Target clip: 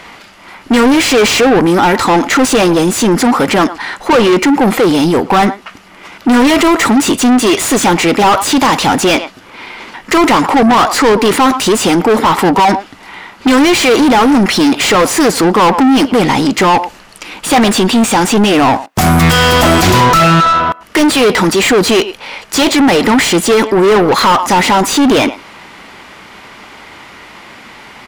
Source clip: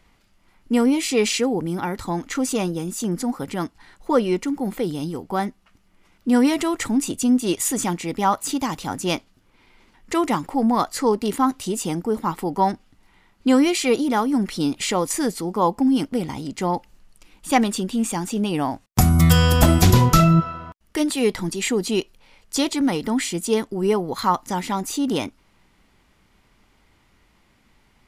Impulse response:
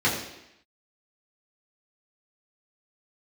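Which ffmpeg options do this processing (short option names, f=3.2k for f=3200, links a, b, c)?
-filter_complex "[0:a]asplit=2[a][b];[b]adelay=110,highpass=300,lowpass=3.4k,asoftclip=type=hard:threshold=-12dB,volume=-25dB[c];[a][c]amix=inputs=2:normalize=0,asplit=2[d][e];[e]highpass=f=720:p=1,volume=37dB,asoftclip=type=tanh:threshold=-1.5dB[f];[d][f]amix=inputs=2:normalize=0,lowpass=f=2.7k:p=1,volume=-6dB,volume=1dB"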